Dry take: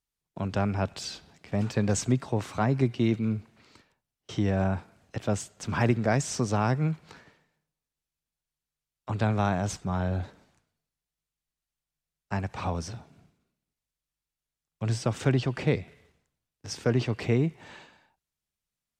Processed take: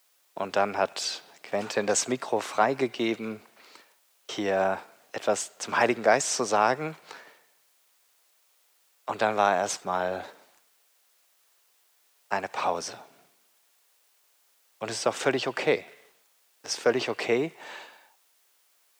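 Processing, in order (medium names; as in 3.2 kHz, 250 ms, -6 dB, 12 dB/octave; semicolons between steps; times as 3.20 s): word length cut 12-bit, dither triangular; Chebyshev high-pass 530 Hz, order 2; trim +7 dB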